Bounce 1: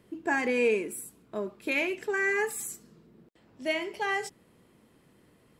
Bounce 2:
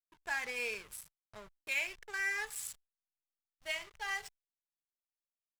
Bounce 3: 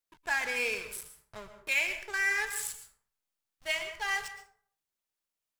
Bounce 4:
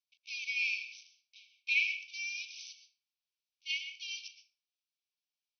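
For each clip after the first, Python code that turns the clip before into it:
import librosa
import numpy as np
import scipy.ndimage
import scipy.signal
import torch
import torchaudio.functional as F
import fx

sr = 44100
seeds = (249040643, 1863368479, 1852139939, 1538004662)

y1 = fx.backlash(x, sr, play_db=-32.0)
y1 = fx.tone_stack(y1, sr, knobs='10-0-10')
y2 = fx.rev_plate(y1, sr, seeds[0], rt60_s=0.53, hf_ratio=0.55, predelay_ms=105, drr_db=9.0)
y2 = y2 * 10.0 ** (6.0 / 20.0)
y3 = fx.brickwall_bandpass(y2, sr, low_hz=2200.0, high_hz=6200.0)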